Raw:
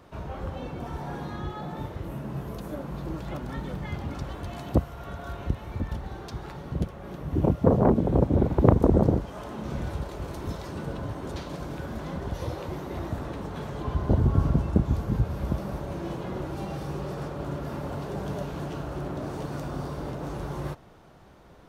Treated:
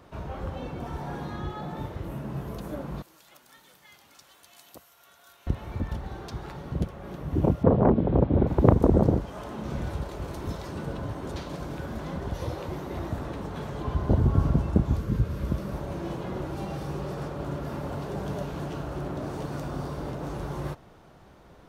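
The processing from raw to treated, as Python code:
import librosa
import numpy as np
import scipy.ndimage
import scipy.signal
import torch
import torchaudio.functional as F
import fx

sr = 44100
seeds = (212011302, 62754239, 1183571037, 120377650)

y = fx.differentiator(x, sr, at=(3.02, 5.47))
y = fx.lowpass(y, sr, hz=3800.0, slope=24, at=(7.63, 8.47))
y = fx.peak_eq(y, sr, hz=780.0, db=fx.line((14.97, -15.0), (15.72, -8.0)), octaves=0.42, at=(14.97, 15.72), fade=0.02)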